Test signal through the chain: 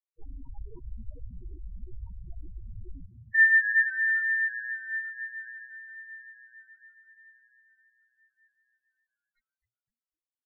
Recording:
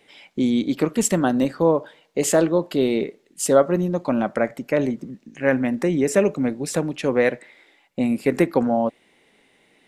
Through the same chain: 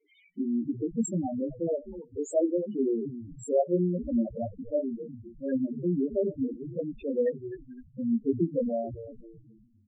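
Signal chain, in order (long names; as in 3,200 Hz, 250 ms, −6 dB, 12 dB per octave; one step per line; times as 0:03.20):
multi-voice chorus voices 6, 0.22 Hz, delay 20 ms, depth 3 ms
echo with shifted repeats 256 ms, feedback 42%, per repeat −120 Hz, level −12 dB
spectral peaks only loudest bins 4
level −4 dB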